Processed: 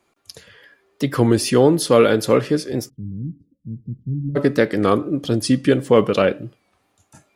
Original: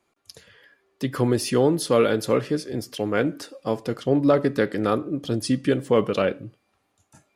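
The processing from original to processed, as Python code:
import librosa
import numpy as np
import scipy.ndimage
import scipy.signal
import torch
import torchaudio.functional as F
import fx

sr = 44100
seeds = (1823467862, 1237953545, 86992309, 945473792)

y = fx.cheby2_lowpass(x, sr, hz=630.0, order=4, stop_db=60, at=(2.89, 4.35), fade=0.02)
y = fx.record_warp(y, sr, rpm=33.33, depth_cents=100.0)
y = y * librosa.db_to_amplitude(5.5)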